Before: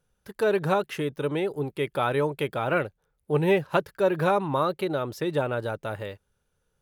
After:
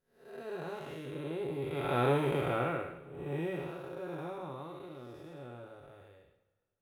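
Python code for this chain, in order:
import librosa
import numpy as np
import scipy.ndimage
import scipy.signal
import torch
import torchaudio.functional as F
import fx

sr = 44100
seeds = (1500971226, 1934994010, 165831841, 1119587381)

y = fx.spec_blur(x, sr, span_ms=298.0)
y = fx.doppler_pass(y, sr, speed_mps=12, closest_m=4.8, pass_at_s=2.19)
y = fx.rev_double_slope(y, sr, seeds[0], early_s=0.23, late_s=1.8, knee_db=-20, drr_db=3.5)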